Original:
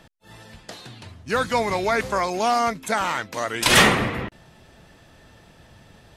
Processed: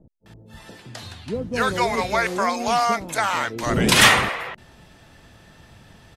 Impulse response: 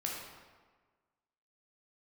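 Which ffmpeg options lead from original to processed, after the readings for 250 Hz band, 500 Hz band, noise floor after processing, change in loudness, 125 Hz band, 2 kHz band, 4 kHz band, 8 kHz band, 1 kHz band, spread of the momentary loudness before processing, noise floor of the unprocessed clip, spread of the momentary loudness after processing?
+1.5 dB, -0.5 dB, -52 dBFS, +1.0 dB, +2.0 dB, +2.0 dB, +2.0 dB, +2.0 dB, +1.0 dB, 19 LU, -52 dBFS, 22 LU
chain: -filter_complex "[0:a]acrossover=split=510[s0][s1];[s1]adelay=260[s2];[s0][s2]amix=inputs=2:normalize=0,volume=1.26"

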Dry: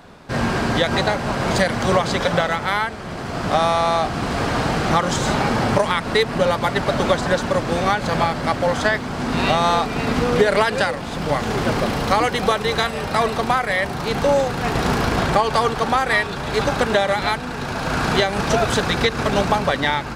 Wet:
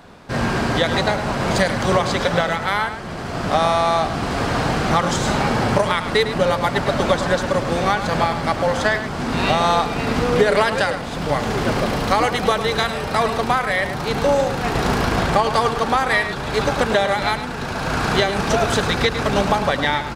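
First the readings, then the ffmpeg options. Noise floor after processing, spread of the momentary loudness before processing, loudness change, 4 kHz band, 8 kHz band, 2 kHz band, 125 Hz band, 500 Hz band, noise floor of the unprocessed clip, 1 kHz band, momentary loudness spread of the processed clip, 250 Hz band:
-27 dBFS, 5 LU, +0.5 dB, +0.5 dB, +0.5 dB, +0.5 dB, +0.5 dB, +0.5 dB, -28 dBFS, +0.5 dB, 5 LU, 0.0 dB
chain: -filter_complex "[0:a]asplit=2[s0][s1];[s1]adelay=105,volume=0.316,highshelf=f=4000:g=-2.36[s2];[s0][s2]amix=inputs=2:normalize=0"

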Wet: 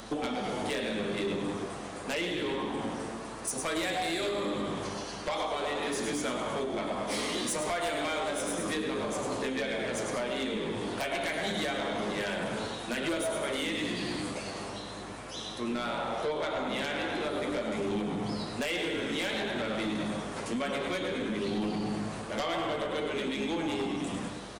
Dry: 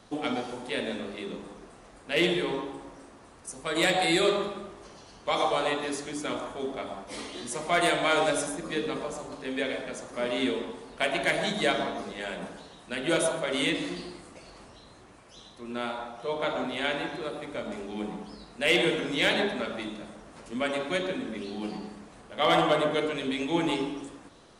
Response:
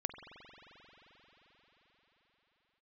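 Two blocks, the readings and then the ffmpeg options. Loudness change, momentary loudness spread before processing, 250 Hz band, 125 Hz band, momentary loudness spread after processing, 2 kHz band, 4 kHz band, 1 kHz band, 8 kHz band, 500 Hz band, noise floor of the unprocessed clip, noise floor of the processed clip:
-3.5 dB, 18 LU, -1.0 dB, 0.0 dB, 5 LU, -4.0 dB, -4.0 dB, -3.0 dB, +0.5 dB, -3.0 dB, -52 dBFS, -41 dBFS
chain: -filter_complex "[0:a]asplit=7[s0][s1][s2][s3][s4][s5][s6];[s1]adelay=103,afreqshift=-51,volume=0.398[s7];[s2]adelay=206,afreqshift=-102,volume=0.204[s8];[s3]adelay=309,afreqshift=-153,volume=0.104[s9];[s4]adelay=412,afreqshift=-204,volume=0.0531[s10];[s5]adelay=515,afreqshift=-255,volume=0.0269[s11];[s6]adelay=618,afreqshift=-306,volume=0.0138[s12];[s0][s7][s8][s9][s10][s11][s12]amix=inputs=7:normalize=0,acompressor=threshold=0.0141:ratio=16,flanger=delay=8.9:depth=1.3:regen=59:speed=0.31:shape=triangular,highpass=120,aeval=exprs='0.0376*sin(PI/2*2.82*val(0)/0.0376)':c=same,asplit=2[s13][s14];[1:a]atrim=start_sample=2205,adelay=139[s15];[s14][s15]afir=irnorm=-1:irlink=0,volume=0.112[s16];[s13][s16]amix=inputs=2:normalize=0,acompressor=mode=upward:threshold=0.00224:ratio=2.5,aeval=exprs='val(0)+0.00141*(sin(2*PI*50*n/s)+sin(2*PI*2*50*n/s)/2+sin(2*PI*3*50*n/s)/3+sin(2*PI*4*50*n/s)/4+sin(2*PI*5*50*n/s)/5)':c=same,volume=1.26"

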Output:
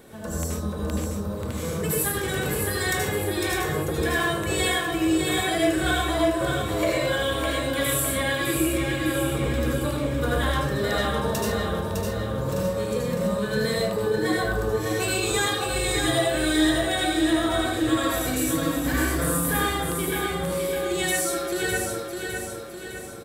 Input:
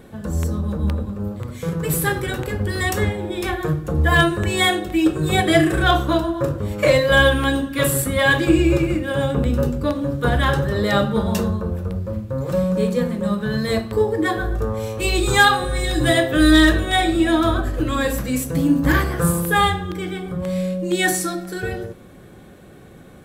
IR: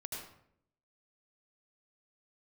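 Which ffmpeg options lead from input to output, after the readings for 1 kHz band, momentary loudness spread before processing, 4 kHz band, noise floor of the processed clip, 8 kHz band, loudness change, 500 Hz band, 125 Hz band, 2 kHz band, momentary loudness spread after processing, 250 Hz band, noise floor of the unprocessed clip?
-6.0 dB, 11 LU, -3.5 dB, -33 dBFS, +1.0 dB, -5.0 dB, -4.0 dB, -7.0 dB, -6.0 dB, 6 LU, -6.0 dB, -43 dBFS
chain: -filter_complex "[0:a]bass=f=250:g=-8,treble=f=4000:g=6,acrossover=split=1700[s0][s1];[s1]volume=2.66,asoftclip=hard,volume=0.376[s2];[s0][s2]amix=inputs=2:normalize=0,acompressor=threshold=0.0631:ratio=4,aecho=1:1:607|1214|1821|2428|3035|3642:0.562|0.281|0.141|0.0703|0.0351|0.0176[s3];[1:a]atrim=start_sample=2205,afade=t=out:st=0.21:d=0.01,atrim=end_sample=9702[s4];[s3][s4]afir=irnorm=-1:irlink=0,volume=1.26"

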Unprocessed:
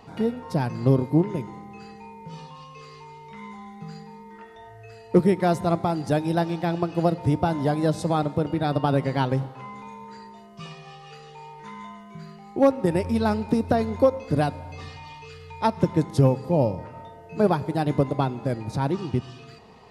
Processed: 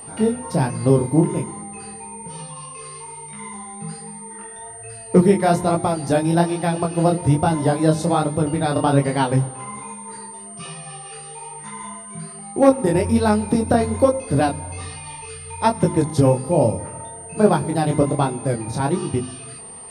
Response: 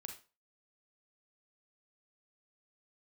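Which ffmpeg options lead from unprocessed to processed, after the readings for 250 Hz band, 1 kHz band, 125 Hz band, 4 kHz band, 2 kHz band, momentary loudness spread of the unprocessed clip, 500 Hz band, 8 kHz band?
+4.5 dB, +5.0 dB, +4.0 dB, +5.0 dB, +5.0 dB, 21 LU, +4.5 dB, +19.5 dB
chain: -af "flanger=delay=19:depth=6.5:speed=1.2,aeval=exprs='val(0)+0.00631*sin(2*PI*8900*n/s)':c=same,bandreject=f=50.91:t=h:w=4,bandreject=f=101.82:t=h:w=4,bandreject=f=152.73:t=h:w=4,bandreject=f=203.64:t=h:w=4,bandreject=f=254.55:t=h:w=4,bandreject=f=305.46:t=h:w=4,bandreject=f=356.37:t=h:w=4,volume=2.51"

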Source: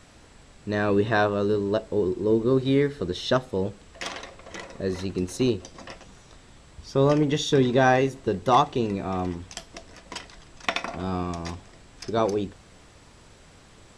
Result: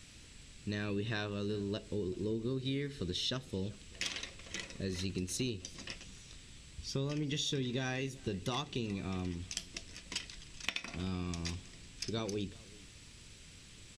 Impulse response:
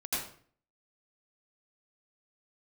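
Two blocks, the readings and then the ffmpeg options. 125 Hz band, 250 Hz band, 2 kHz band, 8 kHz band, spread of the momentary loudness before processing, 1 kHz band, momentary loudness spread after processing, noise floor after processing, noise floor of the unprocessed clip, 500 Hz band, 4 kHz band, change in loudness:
-9.5 dB, -12.5 dB, -12.0 dB, -2.5 dB, 19 LU, -22.0 dB, 17 LU, -55 dBFS, -52 dBFS, -17.0 dB, -4.5 dB, -13.5 dB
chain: -af "firequalizer=gain_entry='entry(120,0);entry(710,-14);entry(2500,4)':delay=0.05:min_phase=1,acompressor=threshold=0.0316:ratio=6,aecho=1:1:383:0.0668,volume=0.708"

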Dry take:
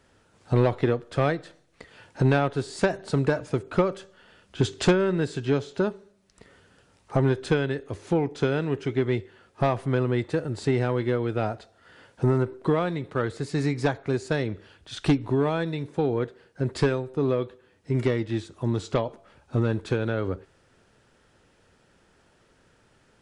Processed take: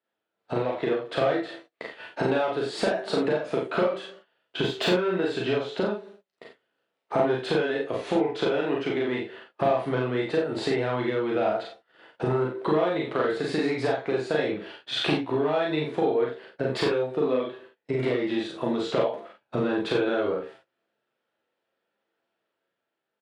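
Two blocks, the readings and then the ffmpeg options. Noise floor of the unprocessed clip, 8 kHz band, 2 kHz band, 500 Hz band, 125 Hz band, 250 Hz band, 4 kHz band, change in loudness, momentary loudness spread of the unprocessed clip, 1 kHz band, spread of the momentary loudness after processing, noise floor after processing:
-63 dBFS, no reading, +1.5 dB, +1.5 dB, -9.5 dB, -1.5 dB, +5.5 dB, -0.5 dB, 7 LU, +1.5 dB, 8 LU, -83 dBFS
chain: -filter_complex "[0:a]flanger=delay=8.7:depth=6.4:regen=-47:speed=0.36:shape=triangular,acrossover=split=710[s0][s1];[s0]crystalizer=i=9:c=0[s2];[s1]asoftclip=type=tanh:threshold=0.0266[s3];[s2][s3]amix=inputs=2:normalize=0,agate=range=0.0355:threshold=0.00224:ratio=16:detection=peak,highpass=290,highshelf=f=4800:t=q:w=1.5:g=-9,acompressor=threshold=0.0141:ratio=5,equalizer=f=660:t=o:w=0.32:g=4,dynaudnorm=f=110:g=13:m=1.5,asplit=2[s4][s5];[s5]adelay=39,volume=0.668[s6];[s4][s6]amix=inputs=2:normalize=0,aecho=1:1:33|48:0.501|0.631,volume=2.37"

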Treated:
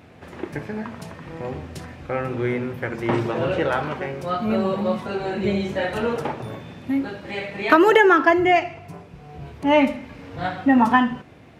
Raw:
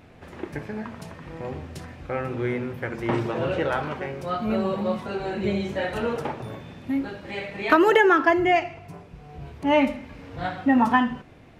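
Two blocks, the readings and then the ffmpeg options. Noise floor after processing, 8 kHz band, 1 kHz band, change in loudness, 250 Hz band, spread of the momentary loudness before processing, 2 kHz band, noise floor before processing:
-46 dBFS, no reading, +3.0 dB, +3.0 dB, +3.0 dB, 20 LU, +3.0 dB, -49 dBFS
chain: -af "highpass=71,volume=1.41"

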